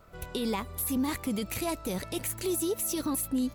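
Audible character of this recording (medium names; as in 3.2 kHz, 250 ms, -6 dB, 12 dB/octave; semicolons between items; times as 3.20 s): noise floor -47 dBFS; spectral tilt -3.5 dB/octave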